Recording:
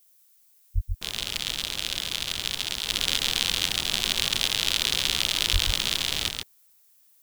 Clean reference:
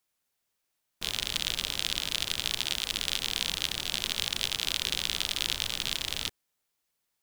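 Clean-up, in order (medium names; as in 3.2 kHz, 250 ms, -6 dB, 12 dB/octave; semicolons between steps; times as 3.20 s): 0.74–0.86 s: high-pass 140 Hz 24 dB/octave; 5.52–5.64 s: high-pass 140 Hz 24 dB/octave; expander -52 dBFS, range -21 dB; inverse comb 136 ms -4.5 dB; 2.88 s: gain correction -4.5 dB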